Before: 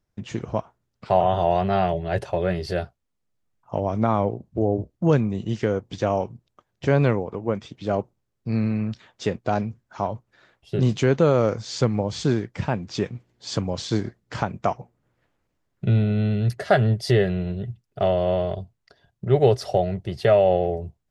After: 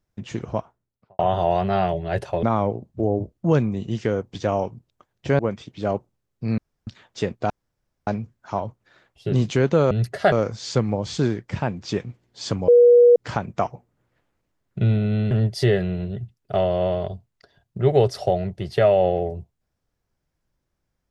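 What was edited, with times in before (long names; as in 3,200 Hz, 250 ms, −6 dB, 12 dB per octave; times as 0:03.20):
0:00.51–0:01.19: fade out and dull
0:02.43–0:04.01: remove
0:06.97–0:07.43: remove
0:08.62–0:08.91: fill with room tone
0:09.54: splice in room tone 0.57 s
0:13.74–0:14.22: beep over 482 Hz −8.5 dBFS
0:16.37–0:16.78: move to 0:11.38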